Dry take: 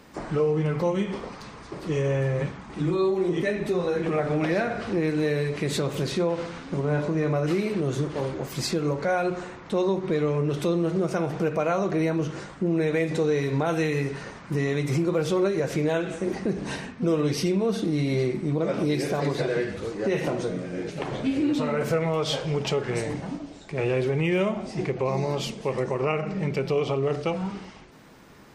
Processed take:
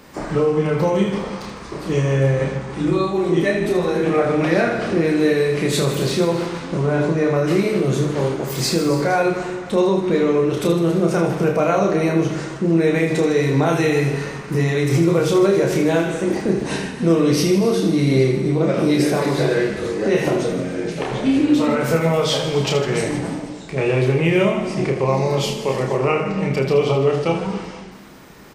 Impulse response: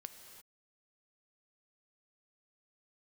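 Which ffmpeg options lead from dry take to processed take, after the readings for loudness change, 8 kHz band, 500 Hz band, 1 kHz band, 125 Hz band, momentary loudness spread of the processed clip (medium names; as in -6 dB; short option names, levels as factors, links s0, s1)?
+7.5 dB, +9.5 dB, +7.5 dB, +7.5 dB, +7.0 dB, 7 LU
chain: -filter_complex "[0:a]bandreject=f=50:t=h:w=6,bandreject=f=100:t=h:w=6,bandreject=f=150:t=h:w=6,aecho=1:1:30|78|154.8|277.7|474.3:0.631|0.398|0.251|0.158|0.1,asplit=2[s0][s1];[1:a]atrim=start_sample=2205,highshelf=f=8600:g=10.5[s2];[s1][s2]afir=irnorm=-1:irlink=0,volume=1.58[s3];[s0][s3]amix=inputs=2:normalize=0"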